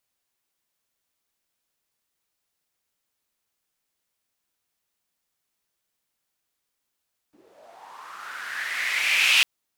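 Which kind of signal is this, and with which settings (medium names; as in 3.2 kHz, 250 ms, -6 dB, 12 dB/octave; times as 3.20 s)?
swept filtered noise white, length 2.10 s bandpass, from 270 Hz, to 2.7 kHz, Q 5.1, linear, gain ramp +33.5 dB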